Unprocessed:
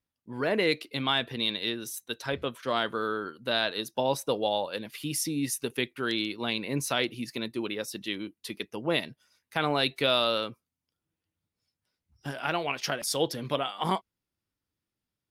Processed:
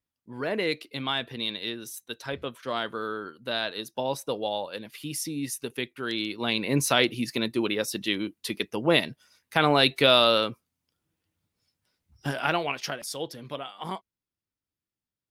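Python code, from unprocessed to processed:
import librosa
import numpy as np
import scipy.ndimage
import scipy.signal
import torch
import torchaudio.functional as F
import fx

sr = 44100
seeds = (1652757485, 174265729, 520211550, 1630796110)

y = fx.gain(x, sr, db=fx.line((6.04, -2.0), (6.72, 6.0), (12.37, 6.0), (13.19, -6.5)))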